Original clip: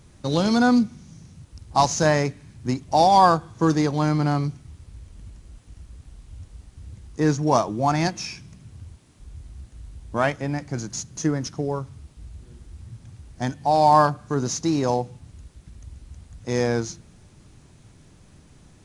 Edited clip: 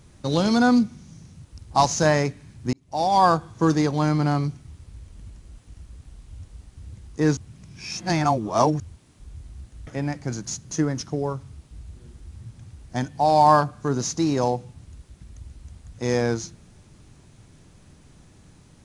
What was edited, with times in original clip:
0:02.73–0:03.36: fade in
0:07.37–0:08.80: reverse
0:09.87–0:10.33: remove

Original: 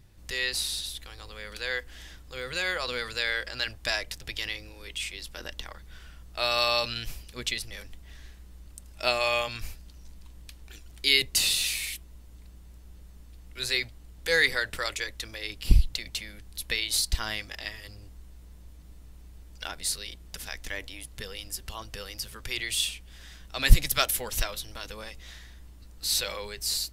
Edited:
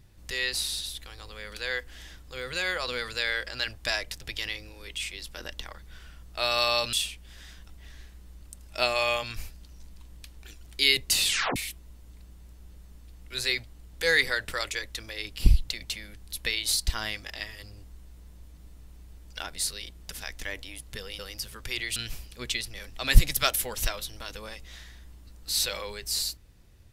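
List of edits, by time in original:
0:06.93–0:07.95: swap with 0:22.76–0:23.53
0:11.50: tape stop 0.31 s
0:21.44–0:21.99: remove

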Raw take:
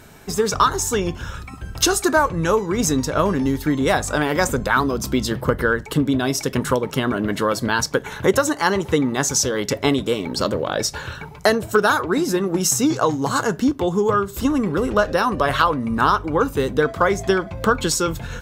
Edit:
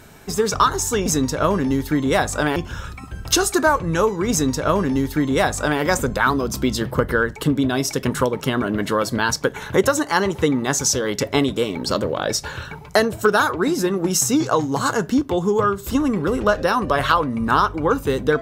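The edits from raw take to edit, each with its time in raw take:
0:02.81–0:04.31: duplicate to 0:01.06

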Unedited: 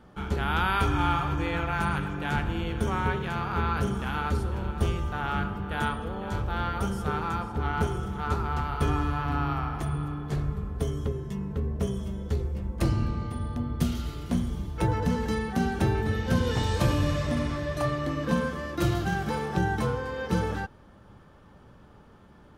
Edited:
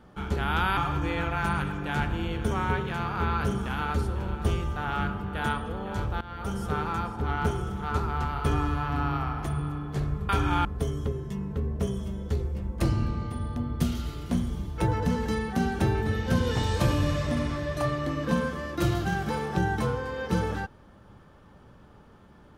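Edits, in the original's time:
0:00.77–0:01.13: move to 0:10.65
0:06.57–0:06.99: fade in linear, from −19 dB

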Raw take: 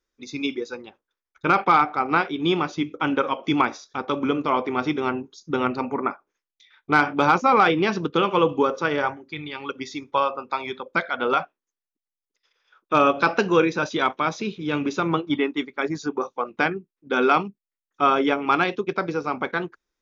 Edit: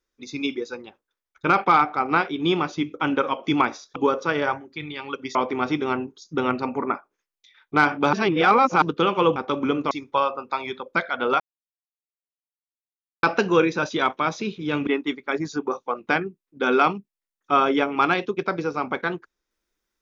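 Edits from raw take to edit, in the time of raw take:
0:03.96–0:04.51: swap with 0:08.52–0:09.91
0:07.29–0:07.98: reverse
0:11.40–0:13.23: silence
0:14.87–0:15.37: remove

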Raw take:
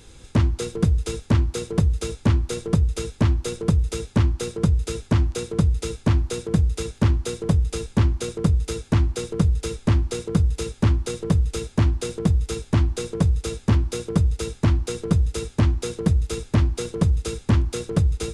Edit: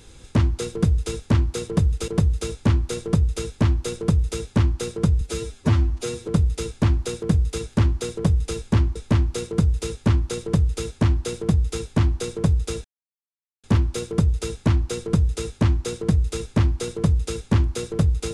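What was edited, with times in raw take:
0:04.81–0:05.52: time-stretch 1.5×
0:08.20–0:09.72: remove
0:11.21–0:11.61: duplicate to 0:01.68
0:13.61: splice in silence 0.79 s

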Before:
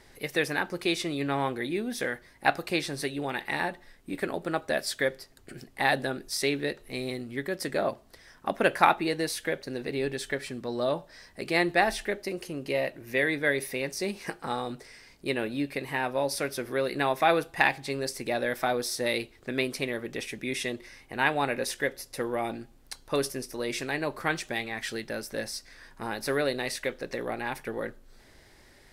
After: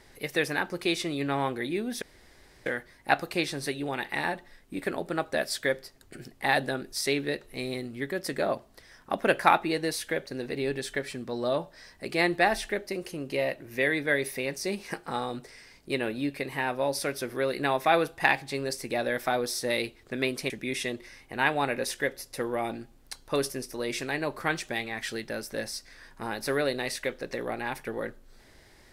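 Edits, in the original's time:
0:02.02: splice in room tone 0.64 s
0:19.86–0:20.30: remove

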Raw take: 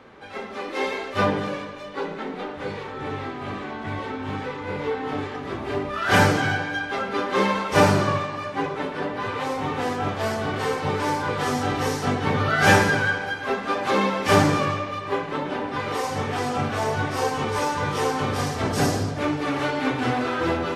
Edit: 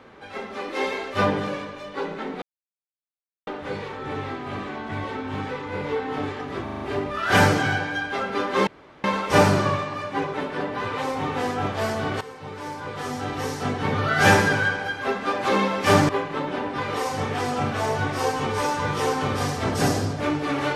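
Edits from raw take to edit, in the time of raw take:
0:02.42: splice in silence 1.05 s
0:05.59: stutter 0.04 s, 5 plays
0:07.46: splice in room tone 0.37 s
0:10.63–0:12.77: fade in, from −16.5 dB
0:14.51–0:15.07: remove

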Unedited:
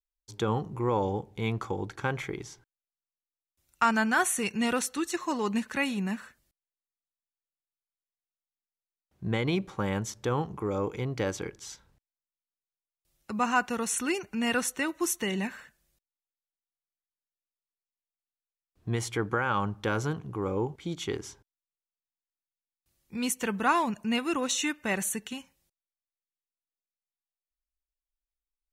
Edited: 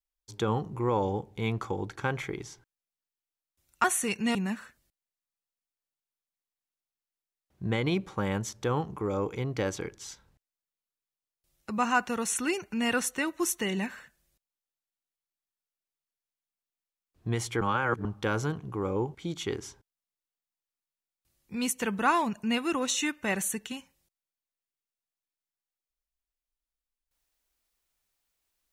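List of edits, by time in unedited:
0:03.84–0:04.19: remove
0:04.70–0:05.96: remove
0:19.22–0:19.66: reverse

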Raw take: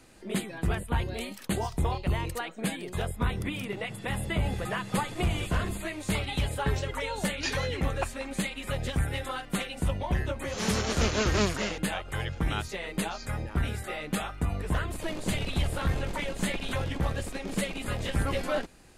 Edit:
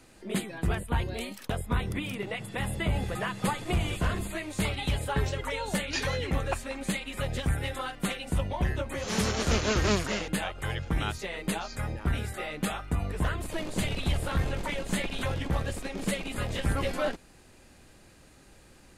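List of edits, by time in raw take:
0:01.50–0:03.00: remove

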